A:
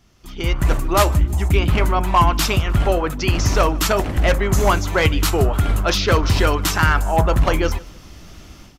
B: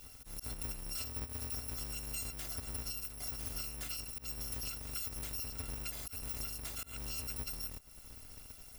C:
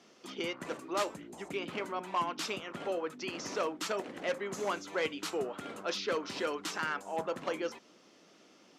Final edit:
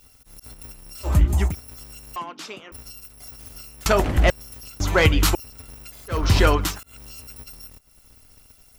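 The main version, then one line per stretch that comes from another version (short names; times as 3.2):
B
1.08–1.5 from A, crossfade 0.10 s
2.16–2.72 from C
3.86–4.3 from A
4.8–5.35 from A
6.19–6.68 from A, crossfade 0.24 s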